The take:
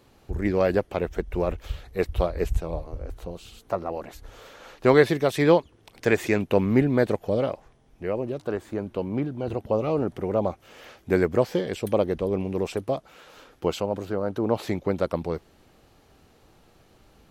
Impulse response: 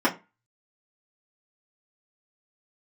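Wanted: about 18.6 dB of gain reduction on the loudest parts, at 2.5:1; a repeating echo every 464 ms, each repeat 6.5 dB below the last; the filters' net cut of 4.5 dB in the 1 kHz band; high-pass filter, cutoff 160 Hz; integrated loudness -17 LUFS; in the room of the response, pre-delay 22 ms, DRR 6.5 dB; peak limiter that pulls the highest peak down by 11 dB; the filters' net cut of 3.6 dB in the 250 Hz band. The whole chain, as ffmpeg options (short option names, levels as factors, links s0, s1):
-filter_complex "[0:a]highpass=160,equalizer=f=250:t=o:g=-3.5,equalizer=f=1000:t=o:g=-6,acompressor=threshold=0.00631:ratio=2.5,alimiter=level_in=3.55:limit=0.0631:level=0:latency=1,volume=0.282,aecho=1:1:464|928|1392|1856|2320|2784:0.473|0.222|0.105|0.0491|0.0231|0.0109,asplit=2[s0][s1];[1:a]atrim=start_sample=2205,adelay=22[s2];[s1][s2]afir=irnorm=-1:irlink=0,volume=0.0794[s3];[s0][s3]amix=inputs=2:normalize=0,volume=23.7"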